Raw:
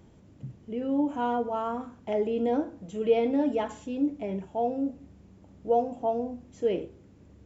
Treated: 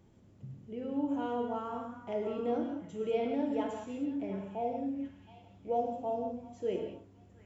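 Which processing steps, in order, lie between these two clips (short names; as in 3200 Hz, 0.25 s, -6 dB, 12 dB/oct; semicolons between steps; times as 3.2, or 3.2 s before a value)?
delay with a stepping band-pass 0.718 s, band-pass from 1400 Hz, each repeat 0.7 oct, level -9.5 dB; non-linear reverb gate 0.22 s flat, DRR 3 dB; gain -8 dB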